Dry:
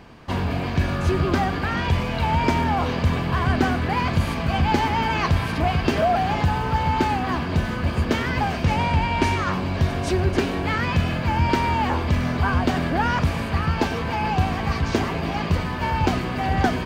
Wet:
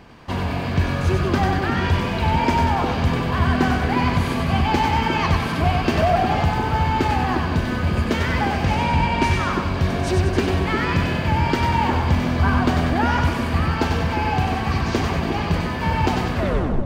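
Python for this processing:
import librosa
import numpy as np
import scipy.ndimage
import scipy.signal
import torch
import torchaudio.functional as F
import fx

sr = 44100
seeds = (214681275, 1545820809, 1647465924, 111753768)

y = fx.tape_stop_end(x, sr, length_s=0.52)
y = fx.echo_split(y, sr, split_hz=530.0, low_ms=356, high_ms=95, feedback_pct=52, wet_db=-4)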